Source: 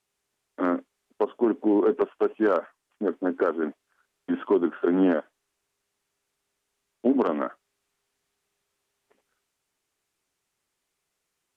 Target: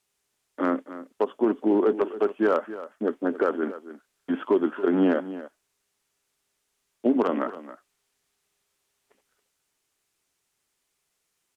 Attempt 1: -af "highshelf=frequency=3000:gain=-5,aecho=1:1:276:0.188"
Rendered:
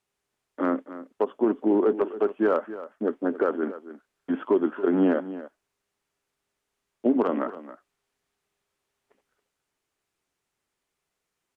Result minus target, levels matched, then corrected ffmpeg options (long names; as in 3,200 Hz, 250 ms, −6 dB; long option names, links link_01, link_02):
4,000 Hz band −5.0 dB
-af "highshelf=frequency=3000:gain=5,aecho=1:1:276:0.188"